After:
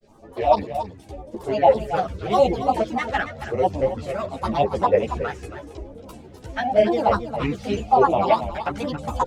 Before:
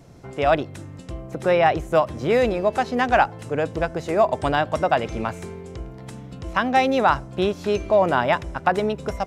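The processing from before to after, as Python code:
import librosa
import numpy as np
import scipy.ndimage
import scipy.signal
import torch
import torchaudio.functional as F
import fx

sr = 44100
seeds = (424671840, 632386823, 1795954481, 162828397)

p1 = fx.peak_eq(x, sr, hz=740.0, db=10.0, octaves=0.62)
p2 = fx.rider(p1, sr, range_db=4, speed_s=0.5)
p3 = p1 + F.gain(torch.from_numpy(p2), 3.0).numpy()
p4 = fx.filter_lfo_notch(p3, sr, shape='sine', hz=0.9, low_hz=760.0, high_hz=1800.0, q=1.3)
p5 = fx.env_flanger(p4, sr, rest_ms=3.9, full_db=-3.5)
p6 = fx.granulator(p5, sr, seeds[0], grain_ms=100.0, per_s=20.0, spray_ms=19.0, spread_st=7)
p7 = p6 + fx.echo_single(p6, sr, ms=276, db=-11.0, dry=0)
p8 = fx.ensemble(p7, sr)
y = F.gain(torch.from_numpy(p8), -3.5).numpy()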